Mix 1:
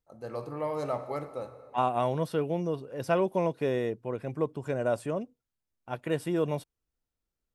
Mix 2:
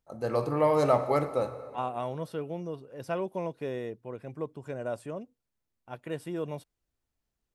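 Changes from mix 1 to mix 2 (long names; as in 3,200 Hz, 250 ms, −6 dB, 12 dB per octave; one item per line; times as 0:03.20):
first voice +8.5 dB
second voice −6.0 dB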